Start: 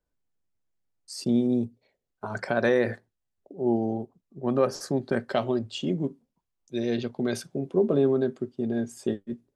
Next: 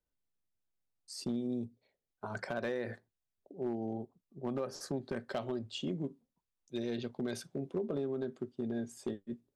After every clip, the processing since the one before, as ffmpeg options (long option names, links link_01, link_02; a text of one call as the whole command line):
ffmpeg -i in.wav -af "acompressor=threshold=-24dB:ratio=20,equalizer=frequency=3700:width=4.3:gain=2.5,asoftclip=type=hard:threshold=-21dB,volume=-7dB" out.wav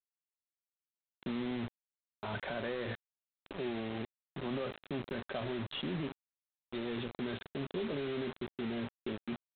ffmpeg -i in.wav -af "alimiter=level_in=12.5dB:limit=-24dB:level=0:latency=1:release=15,volume=-12.5dB,aresample=8000,acrusher=bits=7:mix=0:aa=0.000001,aresample=44100,volume=5.5dB" out.wav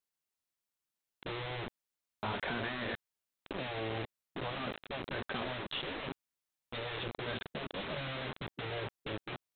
ffmpeg -i in.wav -af "afftfilt=real='re*lt(hypot(re,im),0.0631)':imag='im*lt(hypot(re,im),0.0631)':win_size=1024:overlap=0.75,volume=5dB" out.wav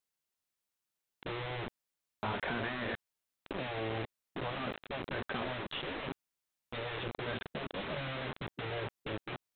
ffmpeg -i in.wav -filter_complex "[0:a]acrossover=split=3600[link_01][link_02];[link_02]acompressor=threshold=-60dB:ratio=4:attack=1:release=60[link_03];[link_01][link_03]amix=inputs=2:normalize=0,volume=1dB" out.wav